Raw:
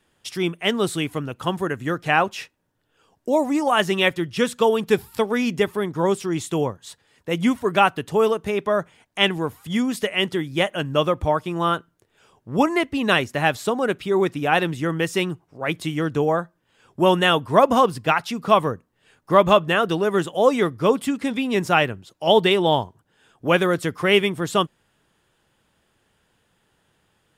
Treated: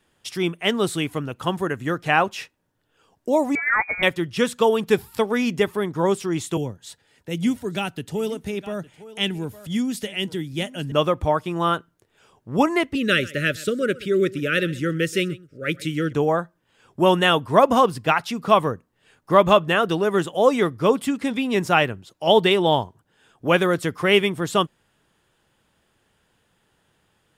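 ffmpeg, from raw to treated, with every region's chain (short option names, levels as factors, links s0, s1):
-filter_complex "[0:a]asettb=1/sr,asplit=3[s0][s1][s2];[s0]atrim=end=3.554[s3];[s1]atrim=start=3.55:end=4.03,asetpts=PTS-STARTPTS,afade=t=in:d=0.004:c=qsin,afade=t=out:st=0.476:d=0.004:c=qsin,highpass=f=500:p=1,adynamicsmooth=sensitivity=4:basefreq=710,lowpass=f=2200:t=q:w=0.5098,lowpass=f=2200:t=q:w=0.6013,lowpass=f=2200:t=q:w=0.9,lowpass=f=2200:t=q:w=2.563,afreqshift=-2600[s4];[s2]atrim=start=4.026[s5];[s3][s4]acrossfade=d=0.004:c1=hsin:c2=qsin[s6];[s6][s5]acrossfade=d=0.004:c1=qsin:c2=hsin,asettb=1/sr,asplit=3[s7][s8][s9];[s7]atrim=end=6.574[s10];[s8]atrim=start=6.57:end=10.92,asetpts=PTS-STARTPTS,afade=t=in:d=0.004:c=qsin,afade=t=out:st=4.346:d=0.004:c=qsin,bandreject=f=1100:w=5.8,aecho=1:1:859:0.1,atrim=end_sample=191835,acrossover=split=320|3000[s11][s12][s13];[s12]acompressor=threshold=0.00224:ratio=1.5:attack=3.2:release=140:knee=2.83:detection=peak[s14];[s11][s14][s13]amix=inputs=3:normalize=0[s15];[s9]atrim=start=10.916[s16];[s10][s15]acrossfade=d=0.004:c1=hsin:c2=qsin[s17];[s17][s16]acrossfade=d=0.004:c1=qsin:c2=hsin,asettb=1/sr,asplit=3[s18][s19][s20];[s18]atrim=end=12.954[s21];[s19]atrim=start=12.95:end=16.13,asetpts=PTS-STARTPTS,afade=t=in:d=0.004:c=qsin,afade=t=out:st=3.176:d=0.004:c=qsin,asuperstop=centerf=870:order=12:qfactor=1.3,deesser=0.25,aecho=1:1:129:0.1,atrim=end_sample=140238[s22];[s20]atrim=start=16.126[s23];[s21][s22]acrossfade=d=0.004:c1=hsin:c2=qsin[s24];[s24][s23]acrossfade=d=0.004:c1=qsin:c2=hsin"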